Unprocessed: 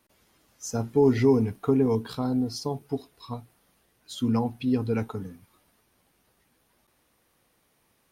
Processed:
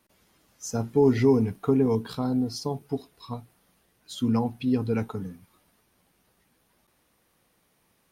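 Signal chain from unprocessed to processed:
parametric band 180 Hz +4.5 dB 0.29 octaves

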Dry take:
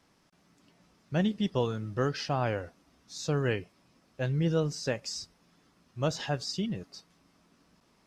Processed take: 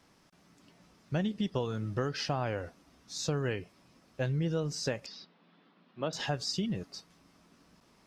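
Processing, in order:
downward compressor 5 to 1, threshold −31 dBFS, peak gain reduction 8 dB
0:05.06–0:06.13: elliptic band-pass filter 180–3,700 Hz, stop band 40 dB
level +2.5 dB

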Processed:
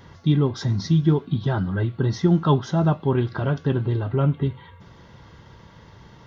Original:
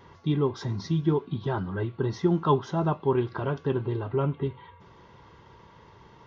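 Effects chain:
graphic EQ with 15 bands 400 Hz −8 dB, 1,000 Hz −9 dB, 2,500 Hz −5 dB
level +8.5 dB

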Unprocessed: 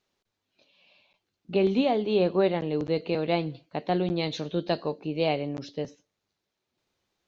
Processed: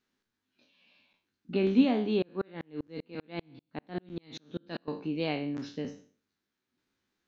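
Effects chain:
peak hold with a decay on every bin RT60 0.44 s
graphic EQ with 15 bands 250 Hz +10 dB, 630 Hz −6 dB, 1,600 Hz +7 dB
0:02.22–0:04.88: tremolo with a ramp in dB swelling 5.1 Hz, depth 39 dB
level −6.5 dB

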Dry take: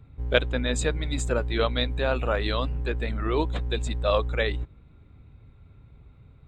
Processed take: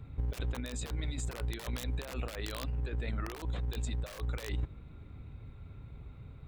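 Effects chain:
wrap-around overflow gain 16 dB
compressor whose output falls as the input rises −31 dBFS, ratio −0.5
level −3 dB

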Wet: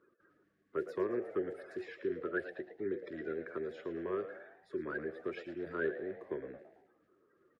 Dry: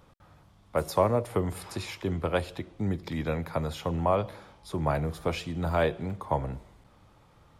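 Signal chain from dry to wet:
spectral magnitudes quantised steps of 30 dB
pair of resonant band-passes 800 Hz, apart 2.1 octaves
echo with shifted repeats 111 ms, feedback 43%, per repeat +91 Hz, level −12 dB
level +2 dB

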